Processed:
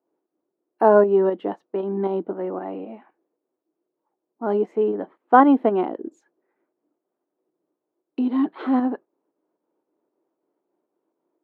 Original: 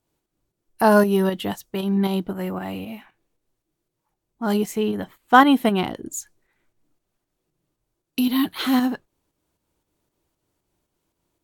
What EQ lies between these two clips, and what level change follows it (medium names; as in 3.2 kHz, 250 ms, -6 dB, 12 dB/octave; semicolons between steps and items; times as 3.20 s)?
high-pass 320 Hz 24 dB/octave; low-pass 1.1 kHz 12 dB/octave; bass shelf 460 Hz +11 dB; -1.0 dB